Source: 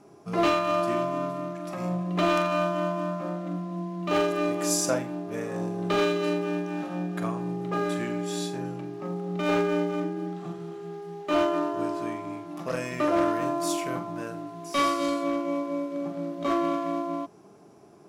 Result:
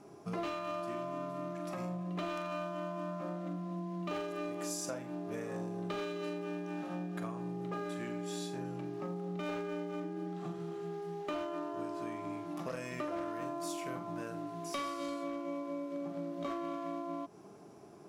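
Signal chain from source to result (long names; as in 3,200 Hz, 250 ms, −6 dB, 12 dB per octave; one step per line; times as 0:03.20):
downward compressor, threshold −35 dBFS, peak gain reduction 14.5 dB
level −1.5 dB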